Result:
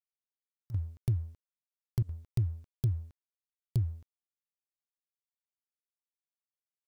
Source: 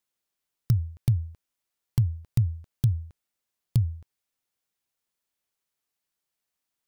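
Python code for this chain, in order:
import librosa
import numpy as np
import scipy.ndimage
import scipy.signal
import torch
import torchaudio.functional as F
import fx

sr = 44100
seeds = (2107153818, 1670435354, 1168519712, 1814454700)

y = fx.volume_shaper(x, sr, bpm=89, per_beat=1, depth_db=-24, release_ms=66.0, shape='slow start')
y = fx.quant_dither(y, sr, seeds[0], bits=12, dither='none')
y = fx.leveller(y, sr, passes=1)
y = F.gain(torch.from_numpy(y), -8.5).numpy()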